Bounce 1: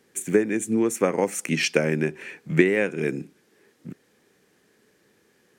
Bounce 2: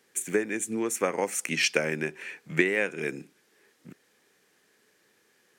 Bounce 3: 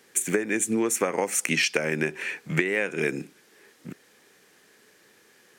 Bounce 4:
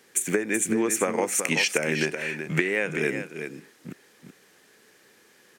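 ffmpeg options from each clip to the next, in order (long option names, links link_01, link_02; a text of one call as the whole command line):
ffmpeg -i in.wav -af "lowshelf=frequency=470:gain=-11.5" out.wav
ffmpeg -i in.wav -af "acompressor=threshold=-28dB:ratio=12,volume=8dB" out.wav
ffmpeg -i in.wav -af "aecho=1:1:378:0.376" out.wav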